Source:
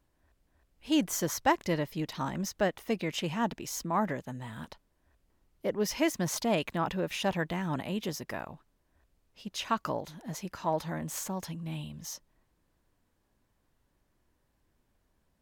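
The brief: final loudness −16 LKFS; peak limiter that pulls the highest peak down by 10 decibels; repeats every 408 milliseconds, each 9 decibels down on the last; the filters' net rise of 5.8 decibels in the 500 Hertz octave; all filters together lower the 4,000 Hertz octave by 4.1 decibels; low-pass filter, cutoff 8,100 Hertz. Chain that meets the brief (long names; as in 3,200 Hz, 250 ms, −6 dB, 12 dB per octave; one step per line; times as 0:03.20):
low-pass filter 8,100 Hz
parametric band 500 Hz +7.5 dB
parametric band 4,000 Hz −6 dB
brickwall limiter −21 dBFS
repeating echo 408 ms, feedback 35%, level −9 dB
level +17 dB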